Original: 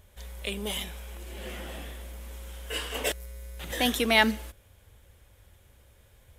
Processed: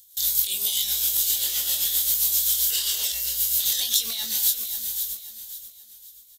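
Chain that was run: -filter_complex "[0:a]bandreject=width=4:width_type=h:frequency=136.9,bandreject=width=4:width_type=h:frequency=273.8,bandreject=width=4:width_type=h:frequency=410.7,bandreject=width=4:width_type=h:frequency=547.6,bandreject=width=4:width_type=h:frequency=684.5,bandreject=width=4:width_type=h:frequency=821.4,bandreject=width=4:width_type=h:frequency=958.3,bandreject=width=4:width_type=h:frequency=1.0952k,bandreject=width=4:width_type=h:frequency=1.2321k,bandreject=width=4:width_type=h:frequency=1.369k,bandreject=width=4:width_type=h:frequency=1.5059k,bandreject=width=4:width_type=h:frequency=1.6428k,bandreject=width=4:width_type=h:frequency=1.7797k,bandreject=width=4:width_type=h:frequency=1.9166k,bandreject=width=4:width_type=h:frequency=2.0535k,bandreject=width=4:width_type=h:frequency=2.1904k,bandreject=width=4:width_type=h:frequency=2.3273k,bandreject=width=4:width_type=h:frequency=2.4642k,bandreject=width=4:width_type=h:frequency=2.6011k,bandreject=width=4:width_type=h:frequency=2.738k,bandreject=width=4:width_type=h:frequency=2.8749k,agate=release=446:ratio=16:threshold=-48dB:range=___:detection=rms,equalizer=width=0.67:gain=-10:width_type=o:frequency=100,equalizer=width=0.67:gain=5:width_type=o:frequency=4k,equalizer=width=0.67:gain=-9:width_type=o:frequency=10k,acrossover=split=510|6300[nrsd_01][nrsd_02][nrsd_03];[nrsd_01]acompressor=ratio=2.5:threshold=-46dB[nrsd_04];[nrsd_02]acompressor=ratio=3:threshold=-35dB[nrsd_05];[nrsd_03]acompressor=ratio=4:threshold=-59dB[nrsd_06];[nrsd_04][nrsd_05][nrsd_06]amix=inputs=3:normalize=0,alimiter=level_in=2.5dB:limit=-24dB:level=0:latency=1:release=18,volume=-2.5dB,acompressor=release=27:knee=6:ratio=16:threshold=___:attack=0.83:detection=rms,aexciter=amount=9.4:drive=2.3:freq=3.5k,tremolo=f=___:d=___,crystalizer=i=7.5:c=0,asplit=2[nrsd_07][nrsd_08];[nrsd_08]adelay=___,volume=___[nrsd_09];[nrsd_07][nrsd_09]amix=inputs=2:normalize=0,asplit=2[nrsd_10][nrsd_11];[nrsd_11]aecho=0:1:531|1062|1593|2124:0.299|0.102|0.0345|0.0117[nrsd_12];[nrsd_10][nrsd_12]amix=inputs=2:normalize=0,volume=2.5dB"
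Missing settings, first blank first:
-23dB, -45dB, 7.6, 0.49, 22, -6dB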